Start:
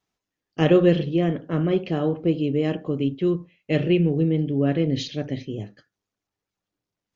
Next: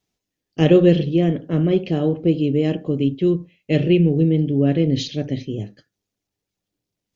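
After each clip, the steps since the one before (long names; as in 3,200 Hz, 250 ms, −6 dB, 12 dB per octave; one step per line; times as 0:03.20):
parametric band 1,200 Hz −9.5 dB 1.5 octaves
level +5 dB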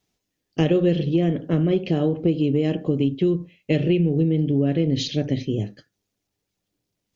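downward compressor 4 to 1, threshold −20 dBFS, peak gain reduction 10.5 dB
level +3 dB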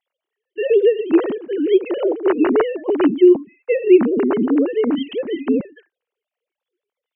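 three sine waves on the formant tracks
level +4.5 dB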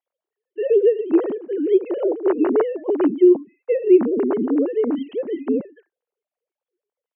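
resonant band-pass 480 Hz, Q 0.63
level −1.5 dB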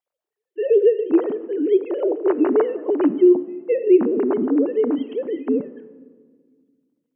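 rectangular room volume 2,100 cubic metres, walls mixed, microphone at 0.4 metres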